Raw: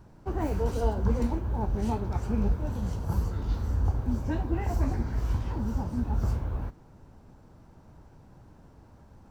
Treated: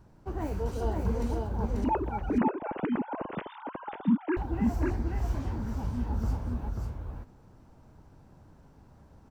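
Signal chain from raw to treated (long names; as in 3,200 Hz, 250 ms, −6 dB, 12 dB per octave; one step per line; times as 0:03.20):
0:01.84–0:04.37: three sine waves on the formant tracks
single-tap delay 539 ms −3 dB
level −4 dB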